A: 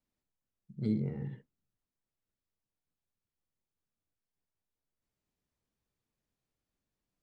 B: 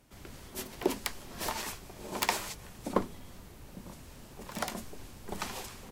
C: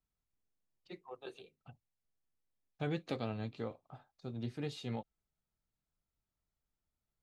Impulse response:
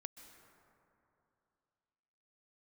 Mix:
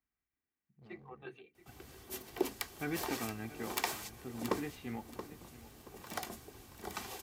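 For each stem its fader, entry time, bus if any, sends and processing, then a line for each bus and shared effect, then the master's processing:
-18.5 dB, 0.00 s, no send, no echo send, hard clipper -35 dBFS, distortion -6 dB
-6.0 dB, 1.55 s, no send, echo send -10.5 dB, peaking EQ 14 kHz +7 dB 0.24 oct
-1.5 dB, 0.00 s, no send, echo send -16 dB, graphic EQ 125/250/500/2000/4000/8000 Hz -6/+7/-7/+10/-10/-11 dB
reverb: none
echo: feedback delay 677 ms, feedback 25%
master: high-pass 62 Hz; comb 2.6 ms, depth 39%

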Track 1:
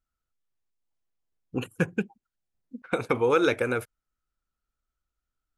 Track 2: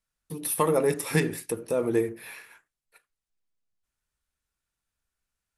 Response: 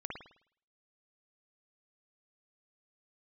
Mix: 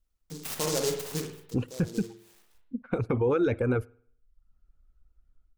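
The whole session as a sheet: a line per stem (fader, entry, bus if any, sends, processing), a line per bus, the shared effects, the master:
-9.5 dB, 0.00 s, send -23.5 dB, reverb removal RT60 0.59 s; tilt EQ -4 dB/octave; level rider gain up to 15 dB
1.05 s -3.5 dB -> 1.38 s -16.5 dB, 0.00 s, send -8 dB, level rider gain up to 4.5 dB; delay time shaken by noise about 5.6 kHz, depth 0.19 ms; auto duck -11 dB, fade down 0.40 s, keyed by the first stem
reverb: on, pre-delay 52 ms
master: peak limiter -18 dBFS, peak gain reduction 8 dB

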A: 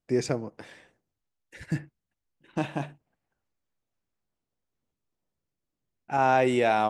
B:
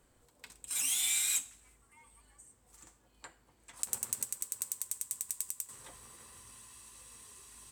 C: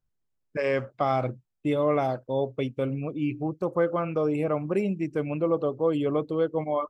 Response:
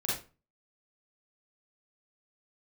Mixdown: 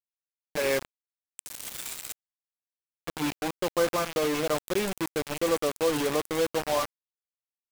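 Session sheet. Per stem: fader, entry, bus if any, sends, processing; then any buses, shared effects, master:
-17.0 dB, 0.50 s, no send, treble shelf 2.2 kHz -7 dB; saturation -16 dBFS, distortion -18 dB; vibrato 12 Hz 89 cents
-10.5 dB, 0.75 s, no send, high-pass 720 Hz; level rider gain up to 5.5 dB; auto duck -7 dB, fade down 1.20 s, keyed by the third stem
+1.5 dB, 0.00 s, muted 1.00–3.08 s, no send, high-pass 440 Hz 6 dB/octave; treble shelf 3.5 kHz -5 dB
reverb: none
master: upward compressor, threshold -33 dBFS; bit crusher 5-bit

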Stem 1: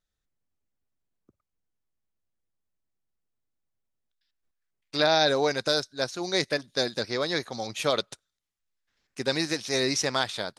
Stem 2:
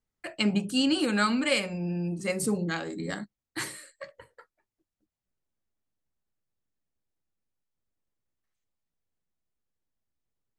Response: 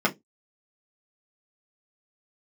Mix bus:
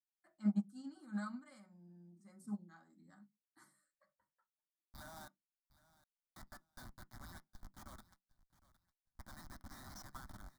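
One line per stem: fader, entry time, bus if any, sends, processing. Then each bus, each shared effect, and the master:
0.0 dB, 0.00 s, muted 5.28–6.36 s, send -22.5 dB, echo send -16.5 dB, high-pass 1.2 kHz 12 dB/octave; Schmitt trigger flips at -29.5 dBFS
-16.0 dB, 0.00 s, send -11.5 dB, no echo send, none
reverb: on, RT60 0.15 s, pre-delay 3 ms
echo: feedback delay 761 ms, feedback 22%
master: static phaser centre 1.1 kHz, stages 4; upward expansion 2.5:1, over -39 dBFS

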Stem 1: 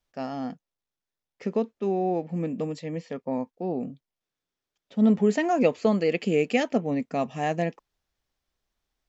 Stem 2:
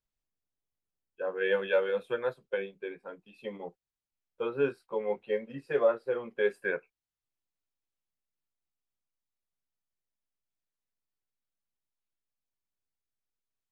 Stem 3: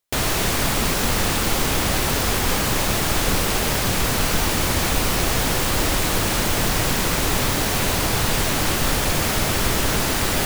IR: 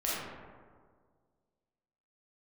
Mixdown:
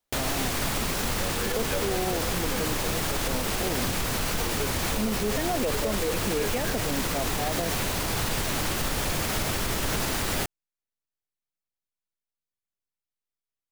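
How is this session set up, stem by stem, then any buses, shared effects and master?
-0.5 dB, 0.00 s, no send, high-pass 490 Hz 6 dB/octave; tilt shelf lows +5 dB
-4.0 dB, 0.00 s, no send, none
-5.5 dB, 0.00 s, no send, none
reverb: none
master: peak limiter -17.5 dBFS, peak gain reduction 10 dB

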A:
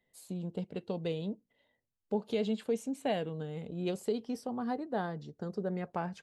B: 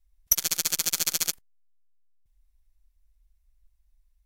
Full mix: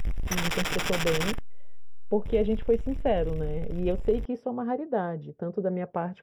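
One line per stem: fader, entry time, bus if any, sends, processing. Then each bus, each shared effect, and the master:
+2.0 dB, 0.00 s, no send, graphic EQ 125/500/8000 Hz +5/+7/-5 dB
+2.5 dB, 0.00 s, no send, power-law waveshaper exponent 0.35; auto duck -7 dB, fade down 0.50 s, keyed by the first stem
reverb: none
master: Savitzky-Golay filter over 25 samples

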